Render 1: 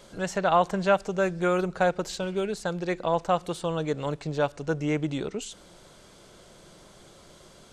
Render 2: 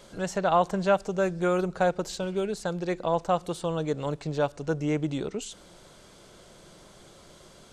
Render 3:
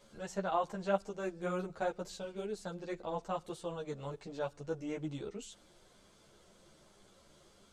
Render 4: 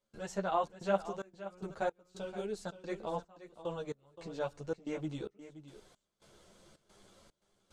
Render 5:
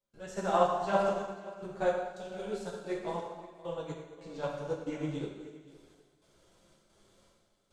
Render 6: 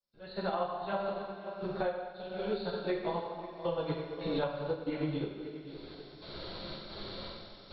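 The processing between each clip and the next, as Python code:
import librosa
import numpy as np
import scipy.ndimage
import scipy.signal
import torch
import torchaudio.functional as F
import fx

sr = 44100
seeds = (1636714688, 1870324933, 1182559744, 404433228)

y1 = fx.dynamic_eq(x, sr, hz=2100.0, q=0.84, threshold_db=-42.0, ratio=4.0, max_db=-4)
y2 = fx.ensemble(y1, sr)
y2 = y2 * 10.0 ** (-8.0 / 20.0)
y3 = fx.step_gate(y2, sr, bpm=111, pattern='.xxxx.xxx...xx.', floor_db=-24.0, edge_ms=4.5)
y3 = y3 + 10.0 ** (-13.5 / 20.0) * np.pad(y3, (int(523 * sr / 1000.0), 0))[:len(y3)]
y3 = y3 * 10.0 ** (1.0 / 20.0)
y4 = fx.rev_plate(y3, sr, seeds[0], rt60_s=1.6, hf_ratio=0.95, predelay_ms=0, drr_db=-3.0)
y4 = fx.upward_expand(y4, sr, threshold_db=-45.0, expansion=1.5)
y4 = y4 * 10.0 ** (3.0 / 20.0)
y5 = fx.freq_compress(y4, sr, knee_hz=3500.0, ratio=4.0)
y5 = fx.recorder_agc(y5, sr, target_db=-15.5, rise_db_per_s=19.0, max_gain_db=30)
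y5 = y5 * 10.0 ** (-8.5 / 20.0)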